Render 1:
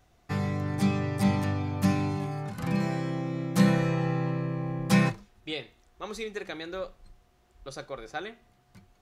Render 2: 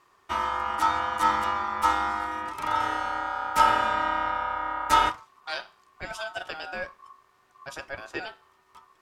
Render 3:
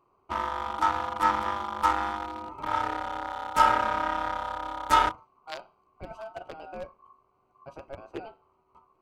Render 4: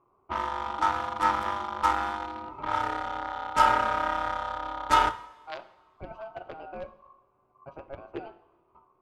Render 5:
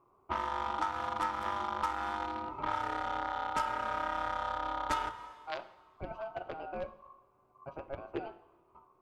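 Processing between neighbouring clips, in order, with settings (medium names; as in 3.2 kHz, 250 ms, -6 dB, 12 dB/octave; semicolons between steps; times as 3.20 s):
ring modulator 1.1 kHz; trim +4 dB
local Wiener filter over 25 samples
level-controlled noise filter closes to 1.8 kHz, open at -24 dBFS; two-slope reverb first 0.75 s, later 2.3 s, from -17 dB, DRR 13.5 dB
compression 16:1, threshold -29 dBFS, peak gain reduction 15.5 dB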